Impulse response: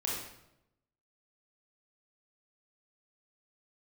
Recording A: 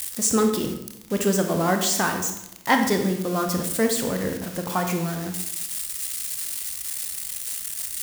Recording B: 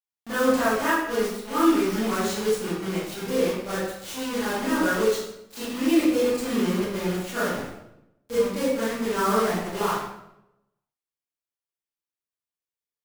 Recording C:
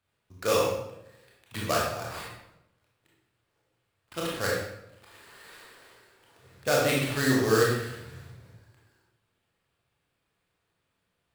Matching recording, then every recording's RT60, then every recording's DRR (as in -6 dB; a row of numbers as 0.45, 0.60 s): C; 0.85, 0.85, 0.85 s; 4.0, -13.0, -4.5 dB